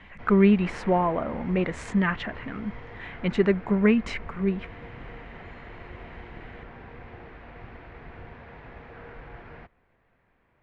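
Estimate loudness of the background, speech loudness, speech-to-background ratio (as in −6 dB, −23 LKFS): −44.0 LKFS, −25.0 LKFS, 19.0 dB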